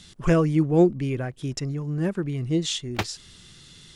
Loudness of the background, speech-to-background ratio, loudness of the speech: -34.0 LUFS, 9.5 dB, -24.5 LUFS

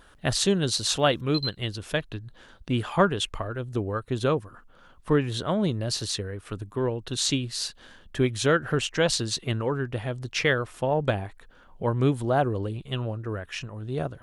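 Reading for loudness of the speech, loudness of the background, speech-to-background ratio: -27.0 LUFS, -33.0 LUFS, 6.0 dB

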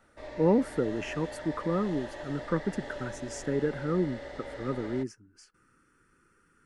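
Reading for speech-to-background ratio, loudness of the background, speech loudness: 10.5 dB, -42.0 LUFS, -31.5 LUFS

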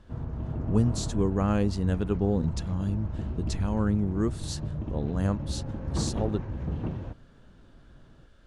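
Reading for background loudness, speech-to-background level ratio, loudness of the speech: -34.5 LUFS, 5.0 dB, -29.5 LUFS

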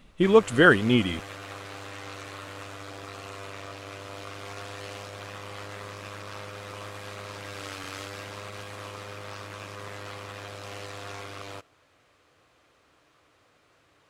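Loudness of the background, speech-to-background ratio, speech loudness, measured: -39.5 LUFS, 19.5 dB, -20.0 LUFS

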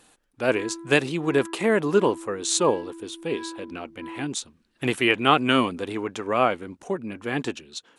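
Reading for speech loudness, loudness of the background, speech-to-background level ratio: -24.5 LUFS, -40.0 LUFS, 15.5 dB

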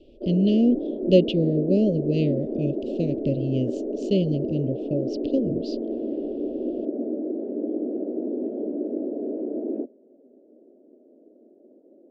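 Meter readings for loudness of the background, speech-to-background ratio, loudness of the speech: -29.5 LUFS, 5.0 dB, -24.5 LUFS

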